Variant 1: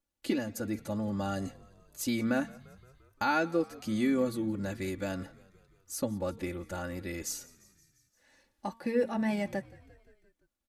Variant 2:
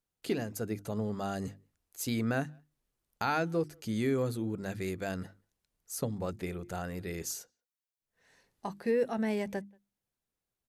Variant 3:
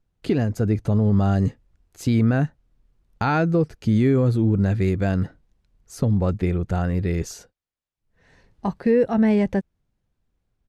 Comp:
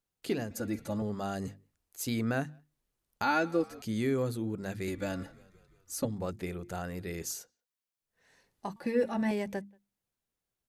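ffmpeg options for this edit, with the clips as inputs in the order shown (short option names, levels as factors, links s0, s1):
-filter_complex "[0:a]asplit=4[s0][s1][s2][s3];[1:a]asplit=5[s4][s5][s6][s7][s8];[s4]atrim=end=0.512[s9];[s0]atrim=start=0.508:end=1.022[s10];[s5]atrim=start=1.018:end=3.232[s11];[s1]atrim=start=3.228:end=3.822[s12];[s6]atrim=start=3.818:end=4.882[s13];[s2]atrim=start=4.878:end=6.052[s14];[s7]atrim=start=6.048:end=8.762[s15];[s3]atrim=start=8.758:end=9.312[s16];[s8]atrim=start=9.308[s17];[s9][s10]acrossfade=d=0.004:c1=hsin:c2=hsin[s18];[s18][s11]acrossfade=d=0.004:c1=hsin:c2=hsin[s19];[s19][s12]acrossfade=d=0.004:c1=hsin:c2=hsin[s20];[s20][s13]acrossfade=d=0.004:c1=hsin:c2=hsin[s21];[s21][s14]acrossfade=d=0.004:c1=hsin:c2=hsin[s22];[s22][s15]acrossfade=d=0.004:c1=hsin:c2=hsin[s23];[s23][s16]acrossfade=d=0.004:c1=hsin:c2=hsin[s24];[s24][s17]acrossfade=d=0.004:c1=hsin:c2=hsin"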